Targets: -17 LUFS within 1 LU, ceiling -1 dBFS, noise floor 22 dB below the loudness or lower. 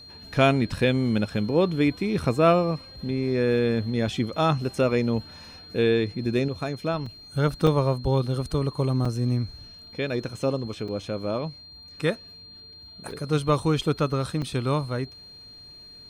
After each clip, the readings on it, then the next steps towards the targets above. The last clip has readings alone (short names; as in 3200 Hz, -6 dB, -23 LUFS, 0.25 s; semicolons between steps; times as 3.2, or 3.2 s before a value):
dropouts 6; longest dropout 4.4 ms; steady tone 4200 Hz; tone level -44 dBFS; loudness -25.5 LUFS; peak -7.0 dBFS; loudness target -17.0 LUFS
-> interpolate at 7.06/7.67/9.05/10.88/13.11/14.42, 4.4 ms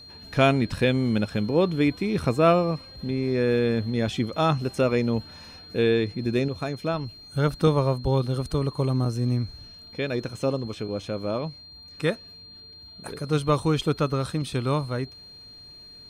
dropouts 0; steady tone 4200 Hz; tone level -44 dBFS
-> notch 4200 Hz, Q 30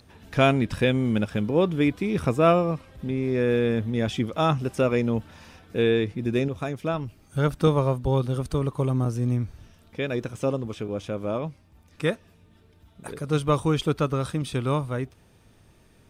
steady tone none; loudness -25.5 LUFS; peak -7.0 dBFS; loudness target -17.0 LUFS
-> gain +8.5 dB; limiter -1 dBFS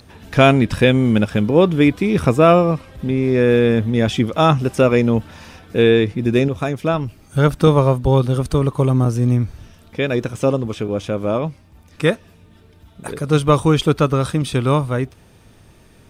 loudness -17.0 LUFS; peak -1.0 dBFS; noise floor -49 dBFS